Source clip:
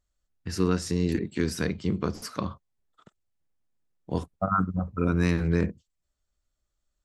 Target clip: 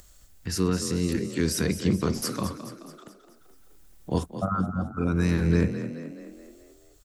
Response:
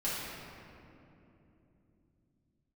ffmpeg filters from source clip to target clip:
-filter_complex "[0:a]highshelf=f=6.4k:g=11.5,acrossover=split=280[a][b];[b]alimiter=limit=-22dB:level=0:latency=1:release=13[c];[a][c]amix=inputs=2:normalize=0,acompressor=mode=upward:threshold=-41dB:ratio=2.5,tremolo=f=0.51:d=0.44,asplit=7[d][e][f][g][h][i][j];[e]adelay=214,afreqshift=37,volume=-11dB[k];[f]adelay=428,afreqshift=74,volume=-16.7dB[l];[g]adelay=642,afreqshift=111,volume=-22.4dB[m];[h]adelay=856,afreqshift=148,volume=-28dB[n];[i]adelay=1070,afreqshift=185,volume=-33.7dB[o];[j]adelay=1284,afreqshift=222,volume=-39.4dB[p];[d][k][l][m][n][o][p]amix=inputs=7:normalize=0,volume=4dB"

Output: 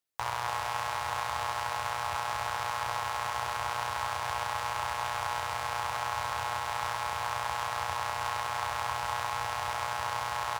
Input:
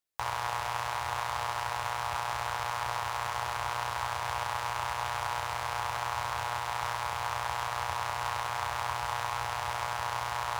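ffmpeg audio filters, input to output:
-af "highpass=62,aecho=1:1:288:0.335"

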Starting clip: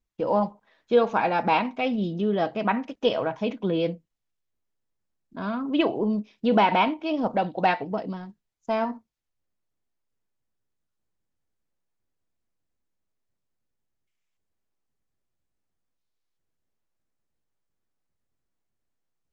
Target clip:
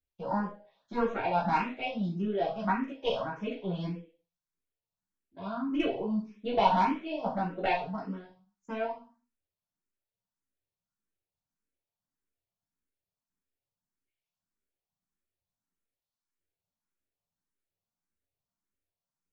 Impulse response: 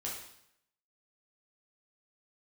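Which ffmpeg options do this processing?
-filter_complex "[0:a]aeval=exprs='0.398*(cos(1*acos(clip(val(0)/0.398,-1,1)))-cos(1*PI/2))+0.158*(cos(2*acos(clip(val(0)/0.398,-1,1)))-cos(2*PI/2))+0.0178*(cos(4*acos(clip(val(0)/0.398,-1,1)))-cos(4*PI/2))':c=same[a];[1:a]atrim=start_sample=2205,asetrate=83790,aresample=44100[b];[a][b]afir=irnorm=-1:irlink=0,asplit=2[c][d];[d]afreqshift=1.7[e];[c][e]amix=inputs=2:normalize=1"

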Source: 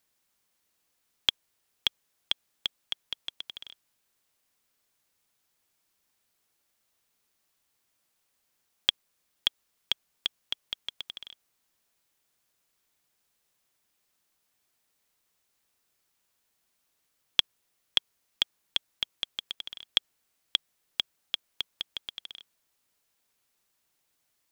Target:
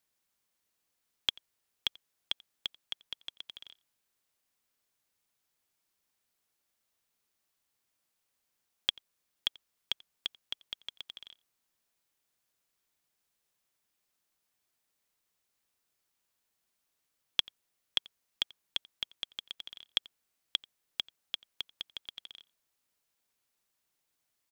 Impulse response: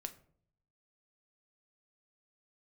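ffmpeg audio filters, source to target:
-filter_complex "[0:a]asplit=2[a][b];[b]adelay=87.46,volume=-24dB,highshelf=f=4k:g=-1.97[c];[a][c]amix=inputs=2:normalize=0,volume=-5.5dB"

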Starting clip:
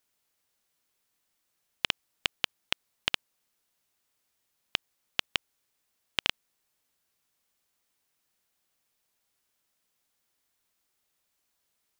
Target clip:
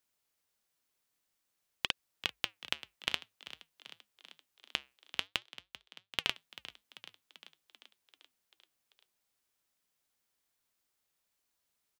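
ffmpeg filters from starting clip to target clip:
-filter_complex "[0:a]asettb=1/sr,asplit=3[a][b][c];[a]atrim=end=5.274[d];[b]atrim=start=5.27:end=6.24,asetpts=PTS-STARTPTS,afade=t=in:d=0.004:c=qsin,afade=t=out:st=0.966:d=0.004:c=qsin,acrusher=bits=6:dc=4:mix=0:aa=0.000001[e];[c]atrim=start=6.236[f];[d][e]acrossfade=d=0.004:c1=hsin:c2=qsin[g];[g][f]acrossfade=d=0.004:c1=qsin:c2=hsin,flanger=delay=0.6:depth=7.3:regen=-83:speed=0.51:shape=triangular,asplit=8[h][i][j][k][l][m][n][o];[i]adelay=390,afreqshift=51,volume=-15.5dB[p];[j]adelay=780,afreqshift=102,volume=-19.2dB[q];[k]adelay=1170,afreqshift=153,volume=-23dB[r];[l]adelay=1560,afreqshift=204,volume=-26.7dB[s];[m]adelay=1950,afreqshift=255,volume=-30.5dB[t];[n]adelay=2340,afreqshift=306,volume=-34.2dB[u];[o]adelay=2730,afreqshift=357,volume=-38dB[v];[h][p][q][r][s][t][u][v]amix=inputs=8:normalize=0"

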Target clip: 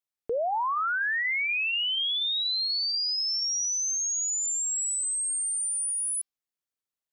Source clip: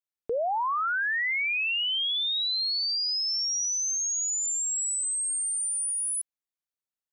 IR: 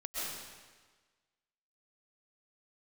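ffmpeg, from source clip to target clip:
-filter_complex "[0:a]bandreject=f=389.7:t=h:w=4,bandreject=f=779.4:t=h:w=4,bandreject=f=1.1691k:t=h:w=4,bandreject=f=1.5588k:t=h:w=4,bandreject=f=1.9485k:t=h:w=4,bandreject=f=2.3382k:t=h:w=4,bandreject=f=2.7279k:t=h:w=4,bandreject=f=3.1176k:t=h:w=4,bandreject=f=3.5073k:t=h:w=4,bandreject=f=3.897k:t=h:w=4,bandreject=f=4.2867k:t=h:w=4,bandreject=f=4.6764k:t=h:w=4,bandreject=f=5.0661k:t=h:w=4,bandreject=f=5.4558k:t=h:w=4,asettb=1/sr,asplit=3[a][b][c];[a]atrim=end=4.634[d];[b]atrim=start=4.63:end=5.22,asetpts=PTS-STARTPTS,afade=t=in:d=0.004:c=qsin,afade=t=out:st=0.586:d=0.004:c=qsin,aeval=exprs='0.0531*(cos(1*acos(clip(val(0)/0.0531,-1,1)))-cos(1*PI/2))+0.000596*(cos(6*acos(clip(val(0)/0.0531,-1,1)))-cos(6*PI/2))':c=same[e];[c]atrim=start=5.216[f];[d][e]acrossfade=d=0.004:c1=hsin:c2=qsin[g];[g][f]acrossfade=d=0.004:c1=qsin:c2=hsin"

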